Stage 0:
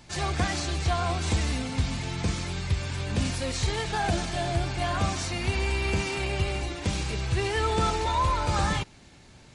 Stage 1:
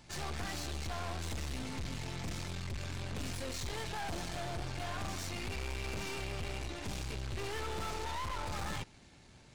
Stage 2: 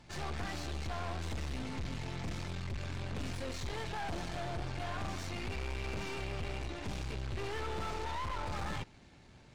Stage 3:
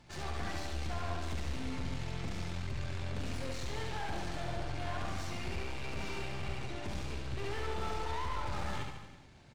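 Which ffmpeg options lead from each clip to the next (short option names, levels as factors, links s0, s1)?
-af "aeval=exprs='(tanh(56.2*val(0)+0.7)-tanh(0.7))/56.2':c=same,volume=0.75"
-af "lowpass=f=3400:p=1,volume=1.12"
-af "aecho=1:1:70|147|231.7|324.9|427.4:0.631|0.398|0.251|0.158|0.1,volume=0.794"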